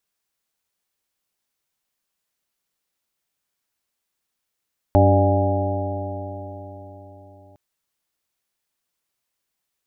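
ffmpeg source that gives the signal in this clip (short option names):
-f lavfi -i "aevalsrc='0.211*pow(10,-3*t/4.24)*sin(2*PI*94.73*t)+0.0473*pow(10,-3*t/4.24)*sin(2*PI*190.26*t)+0.119*pow(10,-3*t/4.24)*sin(2*PI*287.35*t)+0.0708*pow(10,-3*t/4.24)*sin(2*PI*386.78*t)+0.0211*pow(10,-3*t/4.24)*sin(2*PI*489.28*t)+0.168*pow(10,-3*t/4.24)*sin(2*PI*595.52*t)+0.0596*pow(10,-3*t/4.24)*sin(2*PI*706.17*t)+0.106*pow(10,-3*t/4.24)*sin(2*PI*821.82*t)':d=2.61:s=44100"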